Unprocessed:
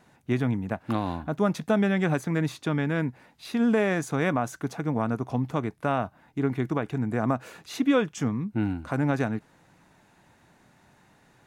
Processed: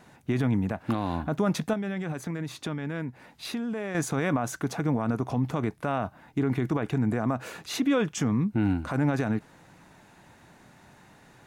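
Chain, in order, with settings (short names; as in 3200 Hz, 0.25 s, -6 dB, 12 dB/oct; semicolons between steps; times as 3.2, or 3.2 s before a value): limiter -22 dBFS, peak gain reduction 9 dB; 1.73–3.95 compressor 3:1, threshold -37 dBFS, peak gain reduction 9 dB; gain +5 dB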